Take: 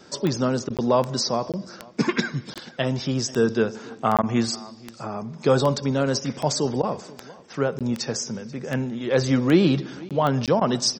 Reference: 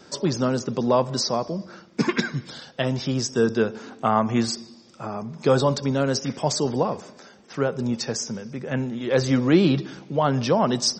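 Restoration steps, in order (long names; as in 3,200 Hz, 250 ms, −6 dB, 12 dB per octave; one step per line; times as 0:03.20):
click removal
repair the gap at 0:00.77/0:01.52/0:02.54/0:04.17/0:07.79/0:10.09/0:10.46, 17 ms
repair the gap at 0:00.69/0:04.22/0:06.82/0:10.60, 11 ms
echo removal 486 ms −22 dB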